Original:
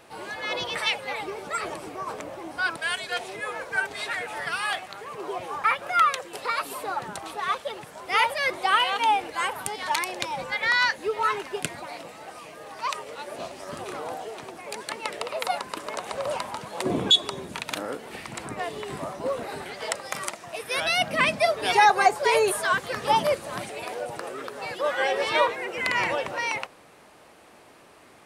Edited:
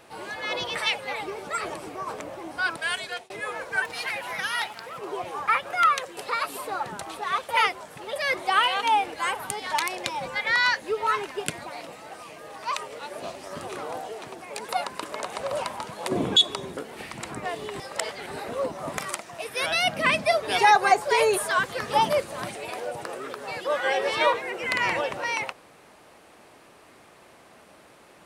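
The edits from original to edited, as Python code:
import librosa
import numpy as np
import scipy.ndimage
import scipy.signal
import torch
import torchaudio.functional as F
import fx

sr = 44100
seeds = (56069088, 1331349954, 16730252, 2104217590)

y = fx.edit(x, sr, fx.fade_out_span(start_s=3.04, length_s=0.26),
    fx.speed_span(start_s=3.82, length_s=1.32, speed=1.14),
    fx.reverse_span(start_s=7.65, length_s=0.67),
    fx.cut(start_s=14.85, length_s=0.58),
    fx.cut(start_s=17.51, length_s=0.4),
    fx.reverse_span(start_s=18.94, length_s=1.18), tone=tone)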